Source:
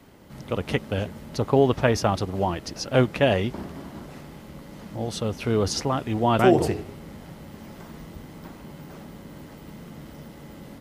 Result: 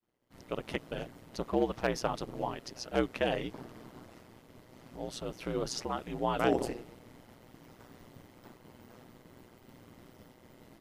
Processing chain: expander -39 dBFS; bell 110 Hz -7.5 dB 1.6 oct; hard clip -9.5 dBFS, distortion -26 dB; ring modulator 61 Hz; gain -6.5 dB

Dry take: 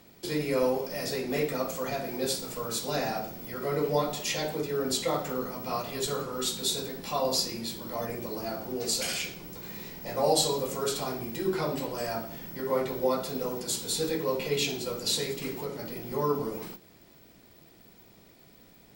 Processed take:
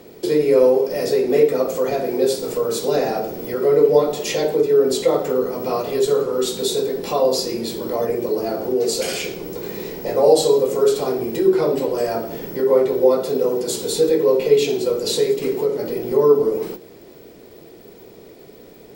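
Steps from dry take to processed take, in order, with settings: bell 430 Hz +15 dB 0.99 oct; in parallel at +1.5 dB: compressor, threshold -29 dBFS, peak gain reduction 18.5 dB

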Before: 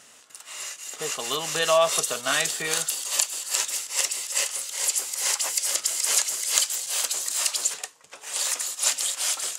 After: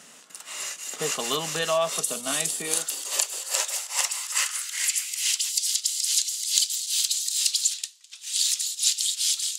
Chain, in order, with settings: 2.04–2.79 fifteen-band EQ 250 Hz +4 dB, 1600 Hz -7 dB, 10000 Hz +10 dB; vocal rider within 4 dB 0.5 s; high-pass sweep 180 Hz -> 3800 Hz, 2.47–5.54; gain -2 dB

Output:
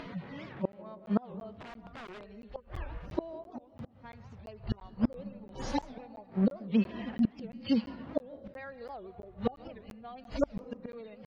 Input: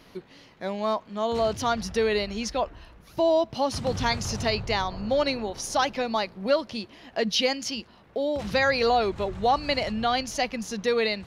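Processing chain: median-filter separation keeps harmonic; flipped gate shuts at -26 dBFS, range -33 dB; 3.44–4.13 compressor 5:1, threshold -54 dBFS, peak gain reduction 17 dB; on a send at -15 dB: reverb RT60 0.95 s, pre-delay 0.11 s; 1.53–2.36 on the sum: wrapped overs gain 53 dB; LPF 2400 Hz 12 dB/oct; in parallel at +3 dB: upward compressor, threshold -47 dBFS; on the sum: crackling interface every 0.34 s, samples 512, zero, from 0.72; record warp 78 rpm, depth 250 cents; gain +2.5 dB

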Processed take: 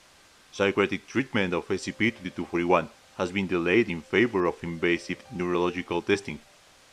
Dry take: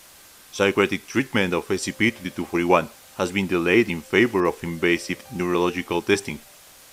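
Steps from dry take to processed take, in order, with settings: air absorption 71 m; gain -4 dB

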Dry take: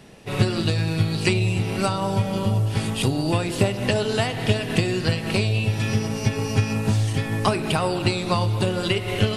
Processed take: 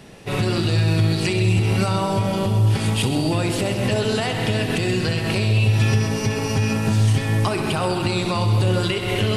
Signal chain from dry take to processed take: limiter -15.5 dBFS, peak gain reduction 10.5 dB; on a send: multi-head echo 65 ms, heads first and second, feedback 65%, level -13 dB; on the sum: gain +3.5 dB

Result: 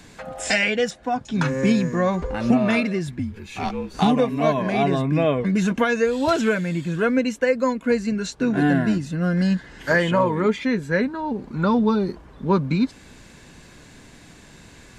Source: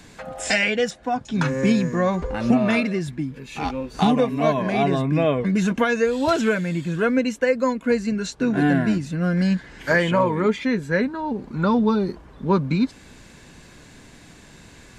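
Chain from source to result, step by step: 3.19–3.94 frequency shift -46 Hz; 8.6–10.42 notch 2300 Hz, Q 11

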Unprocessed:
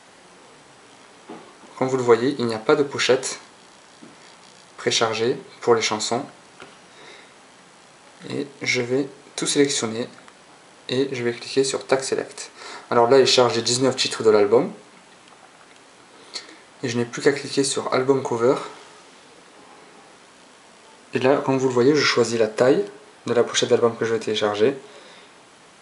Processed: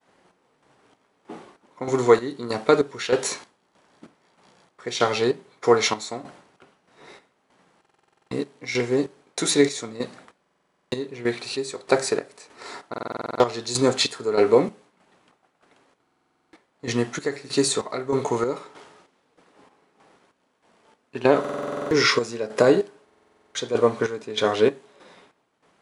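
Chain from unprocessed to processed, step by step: expander -41 dBFS; chopper 1.6 Hz, depth 65%, duty 50%; stuck buffer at 7.8/10.41/12.89/16.02/21.4/23.04, samples 2048, times 10; mismatched tape noise reduction decoder only

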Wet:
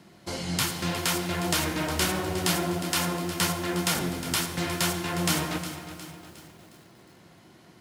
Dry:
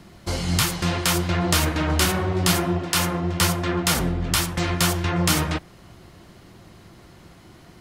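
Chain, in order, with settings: HPF 140 Hz 12 dB/oct; notch 1200 Hz, Q 15; on a send at -9.5 dB: hard clip -14 dBFS, distortion -19 dB + reverb RT60 2.2 s, pre-delay 47 ms; on the sum: lo-fi delay 0.36 s, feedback 55%, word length 7-bit, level -12 dB; gain -5 dB

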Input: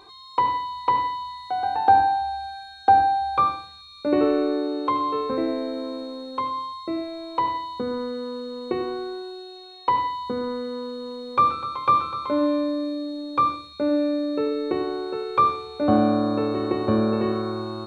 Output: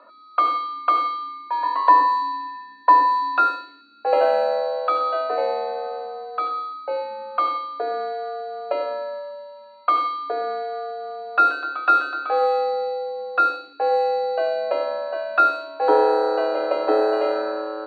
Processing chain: low-pass opened by the level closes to 1300 Hz, open at -15.5 dBFS; frequency shift +210 Hz; gain +2 dB

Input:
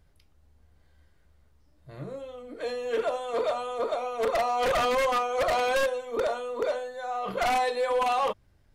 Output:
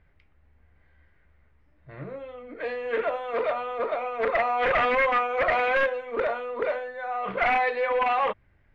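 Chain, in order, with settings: synth low-pass 2100 Hz, resonance Q 2.9; Doppler distortion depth 0.14 ms

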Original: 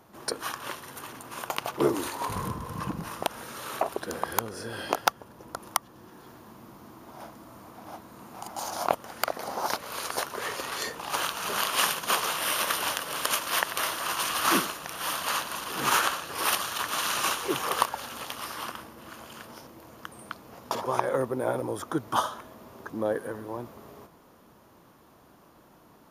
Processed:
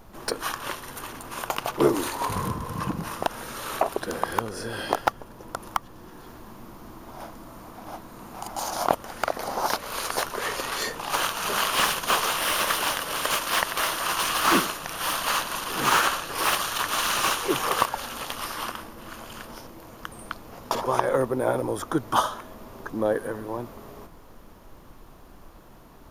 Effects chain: added noise brown -53 dBFS; slew limiter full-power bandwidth 240 Hz; gain +4 dB

